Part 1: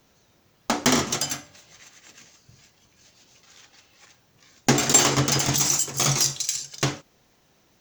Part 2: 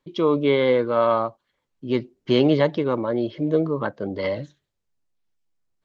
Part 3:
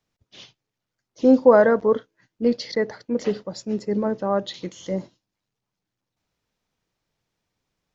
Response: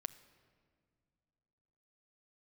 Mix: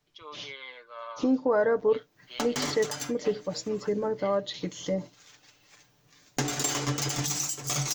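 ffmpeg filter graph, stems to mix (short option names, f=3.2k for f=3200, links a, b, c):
-filter_complex "[0:a]adelay=1700,volume=-5dB[a];[1:a]highpass=1.3k,volume=-14dB[b];[2:a]volume=2dB[c];[a][c]amix=inputs=2:normalize=0,acompressor=threshold=-31dB:ratio=2,volume=0dB[d];[b][d]amix=inputs=2:normalize=0,aecho=1:1:6.8:0.57"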